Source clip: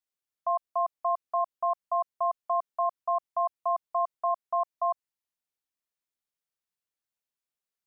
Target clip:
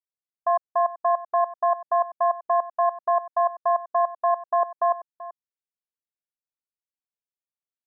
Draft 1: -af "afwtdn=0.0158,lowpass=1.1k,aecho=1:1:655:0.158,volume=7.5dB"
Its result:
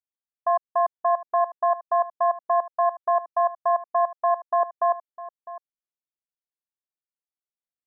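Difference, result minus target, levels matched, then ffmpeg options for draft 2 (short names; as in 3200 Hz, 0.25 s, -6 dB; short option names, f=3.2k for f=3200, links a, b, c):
echo 0.271 s late
-af "afwtdn=0.0158,lowpass=1.1k,aecho=1:1:384:0.158,volume=7.5dB"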